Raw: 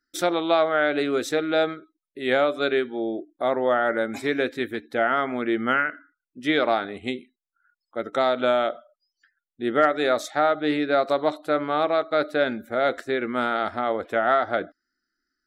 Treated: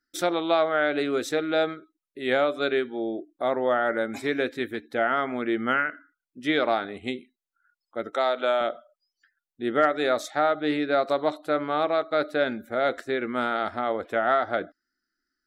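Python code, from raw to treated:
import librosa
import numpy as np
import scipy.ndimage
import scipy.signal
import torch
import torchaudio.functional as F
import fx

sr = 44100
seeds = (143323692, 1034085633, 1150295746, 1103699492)

y = fx.highpass(x, sr, hz=390.0, slope=12, at=(8.11, 8.61))
y = y * librosa.db_to_amplitude(-2.0)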